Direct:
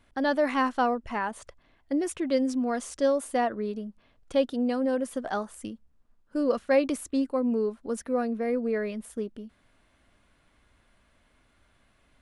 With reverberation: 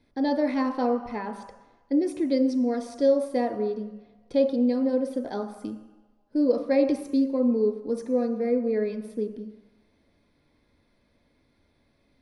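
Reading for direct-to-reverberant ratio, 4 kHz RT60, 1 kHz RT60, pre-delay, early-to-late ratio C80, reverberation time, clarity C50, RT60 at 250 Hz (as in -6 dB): 5.5 dB, 1.3 s, 1.2 s, 3 ms, 11.5 dB, 1.1 s, 9.5 dB, 1.0 s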